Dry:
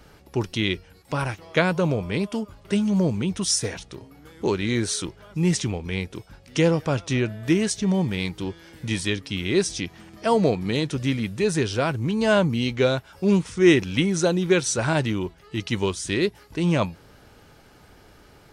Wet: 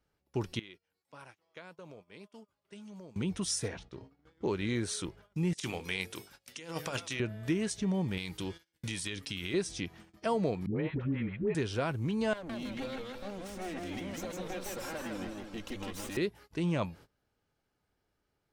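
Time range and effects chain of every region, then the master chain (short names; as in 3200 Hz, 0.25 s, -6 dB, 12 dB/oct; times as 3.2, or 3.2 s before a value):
0.59–3.16 HPF 400 Hz 6 dB/oct + compressor 3:1, threshold -44 dBFS
3.68–4.51 upward compressor, threshold -40 dBFS + LPF 4700 Hz + bell 2600 Hz -2.5 dB 1.1 oct
5.53–7.2 tilt +3.5 dB/oct + negative-ratio compressor -28 dBFS, ratio -0.5 + notches 50/100/150/200/250/300/350/400/450/500 Hz
8.17–9.54 gate -45 dBFS, range -14 dB + high shelf 2200 Hz +11 dB + compressor, threshold -25 dBFS
10.66–11.55 LPF 2200 Hz 24 dB/oct + dispersion highs, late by 0.104 s, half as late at 590 Hz
12.33–16.17 minimum comb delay 3.7 ms + compressor 8:1, threshold -30 dBFS + warbling echo 0.162 s, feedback 52%, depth 170 cents, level -3 dB
whole clip: gate -43 dBFS, range -22 dB; dynamic EQ 5700 Hz, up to -4 dB, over -44 dBFS, Q 0.93; compressor 2:1, threshold -22 dBFS; gain -7 dB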